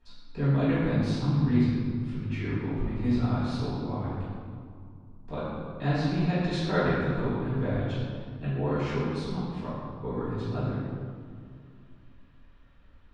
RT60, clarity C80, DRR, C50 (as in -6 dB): 2.3 s, -0.5 dB, -13.0 dB, -2.5 dB